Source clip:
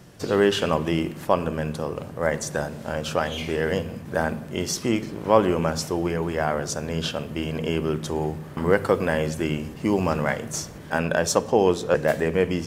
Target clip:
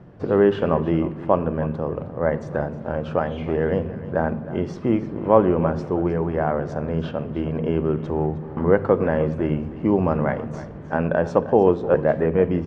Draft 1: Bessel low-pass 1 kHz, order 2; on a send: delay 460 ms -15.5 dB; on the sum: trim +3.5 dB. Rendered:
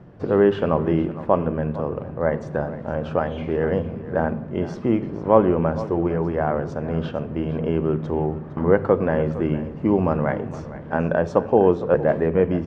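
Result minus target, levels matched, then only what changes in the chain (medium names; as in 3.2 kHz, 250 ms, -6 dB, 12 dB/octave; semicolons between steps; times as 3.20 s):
echo 149 ms late
change: delay 311 ms -15.5 dB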